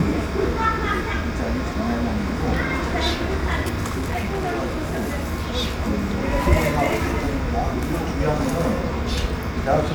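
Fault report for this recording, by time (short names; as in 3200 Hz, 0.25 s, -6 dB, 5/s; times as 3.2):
3.87–5.34 clipped -21 dBFS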